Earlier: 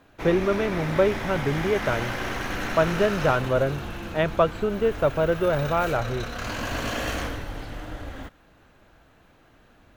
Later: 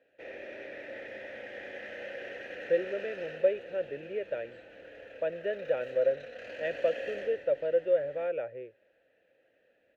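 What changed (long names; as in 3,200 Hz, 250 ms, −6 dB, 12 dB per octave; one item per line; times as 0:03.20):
speech: entry +2.45 s
master: add formant filter e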